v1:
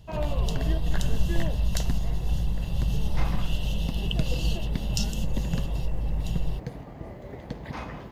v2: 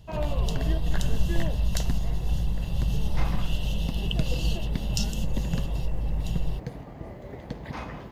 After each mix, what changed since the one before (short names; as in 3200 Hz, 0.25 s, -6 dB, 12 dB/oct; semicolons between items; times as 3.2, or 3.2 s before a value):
none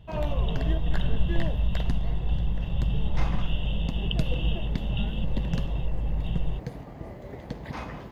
speech: add brick-wall FIR low-pass 3800 Hz